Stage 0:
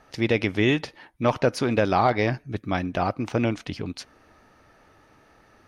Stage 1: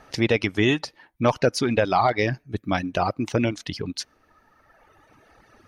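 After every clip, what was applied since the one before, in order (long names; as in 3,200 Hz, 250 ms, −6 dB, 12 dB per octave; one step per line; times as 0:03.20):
reverb reduction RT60 2 s
dynamic equaliser 6,000 Hz, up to +4 dB, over −49 dBFS, Q 0.98
in parallel at −2 dB: downward compressor, threshold −29 dBFS, peak gain reduction 13 dB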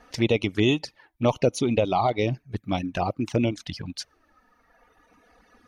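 flanger swept by the level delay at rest 4.4 ms, full sweep at −19.5 dBFS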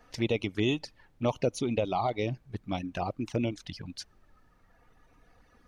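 background noise brown −55 dBFS
level −6.5 dB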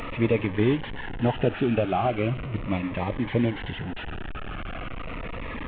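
linear delta modulator 16 kbit/s, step −33 dBFS
phaser whose notches keep moving one way falling 0.38 Hz
level +7 dB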